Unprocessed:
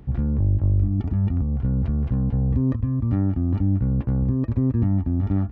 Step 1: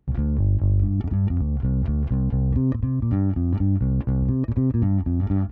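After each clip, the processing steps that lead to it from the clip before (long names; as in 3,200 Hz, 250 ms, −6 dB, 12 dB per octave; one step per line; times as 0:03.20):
noise gate with hold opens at −26 dBFS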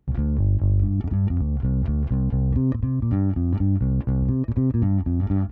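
every ending faded ahead of time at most 500 dB per second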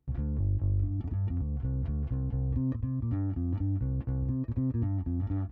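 notch comb filter 200 Hz
level −8.5 dB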